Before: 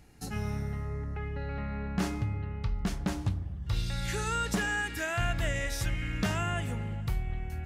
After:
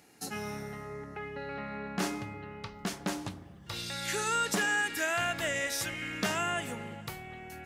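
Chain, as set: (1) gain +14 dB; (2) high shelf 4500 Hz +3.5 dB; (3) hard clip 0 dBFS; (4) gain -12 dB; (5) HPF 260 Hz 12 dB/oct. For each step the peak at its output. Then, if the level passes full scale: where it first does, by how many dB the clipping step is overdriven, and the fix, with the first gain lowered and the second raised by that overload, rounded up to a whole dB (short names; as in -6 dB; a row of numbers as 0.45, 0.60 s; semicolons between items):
-5.0, -4.5, -4.5, -16.5, -15.5 dBFS; no overload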